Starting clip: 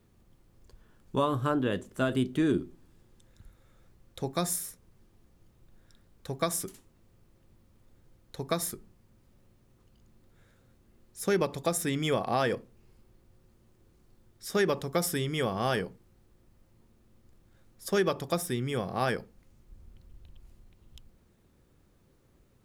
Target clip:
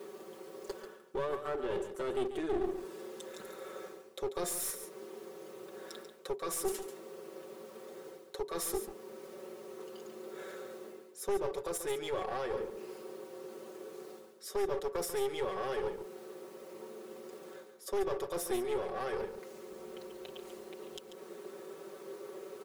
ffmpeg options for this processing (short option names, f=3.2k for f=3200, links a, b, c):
-af "highpass=f=430:t=q:w=4.9,equalizer=f=1.2k:t=o:w=0.54:g=4.5,areverse,acompressor=threshold=-40dB:ratio=8,areverse,alimiter=level_in=16.5dB:limit=-24dB:level=0:latency=1:release=274,volume=-16.5dB,aecho=1:1:5.3:0.9,aeval=exprs='clip(val(0),-1,0.00376)':c=same,aecho=1:1:140:0.316,volume=13dB"